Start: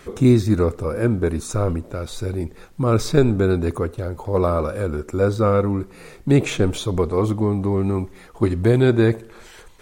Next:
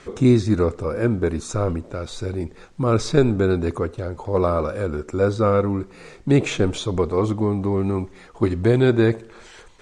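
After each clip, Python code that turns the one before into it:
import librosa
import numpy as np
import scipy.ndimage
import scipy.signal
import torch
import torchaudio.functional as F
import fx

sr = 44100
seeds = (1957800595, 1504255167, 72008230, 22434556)

y = scipy.signal.sosfilt(scipy.signal.butter(4, 8200.0, 'lowpass', fs=sr, output='sos'), x)
y = fx.low_shelf(y, sr, hz=140.0, db=-3.5)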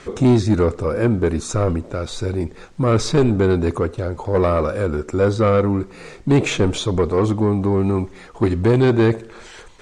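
y = 10.0 ** (-13.0 / 20.0) * np.tanh(x / 10.0 ** (-13.0 / 20.0))
y = F.gain(torch.from_numpy(y), 4.5).numpy()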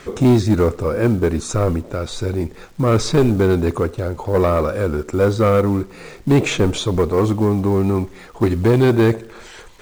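y = fx.dmg_crackle(x, sr, seeds[0], per_s=260.0, level_db=-42.0)
y = fx.quant_float(y, sr, bits=4)
y = F.gain(torch.from_numpy(y), 1.0).numpy()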